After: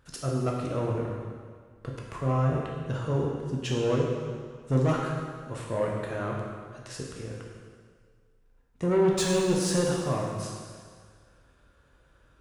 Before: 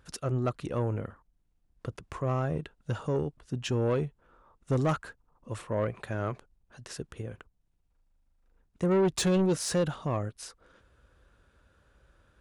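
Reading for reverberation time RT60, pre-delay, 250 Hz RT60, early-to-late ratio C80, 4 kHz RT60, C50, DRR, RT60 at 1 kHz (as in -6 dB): 1.8 s, 6 ms, 1.8 s, 2.5 dB, 1.7 s, 1.0 dB, -2.5 dB, 1.8 s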